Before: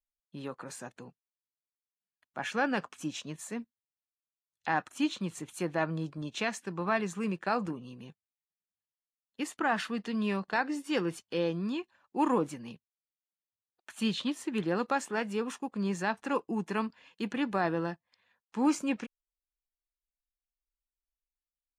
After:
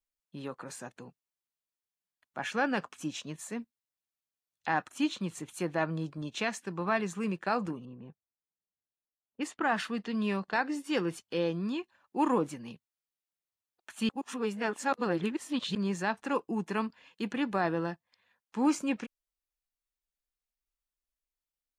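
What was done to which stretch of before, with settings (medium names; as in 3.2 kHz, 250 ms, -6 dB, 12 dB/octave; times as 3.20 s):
7.85–10.65 s: level-controlled noise filter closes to 690 Hz, open at -29.5 dBFS
14.09–15.75 s: reverse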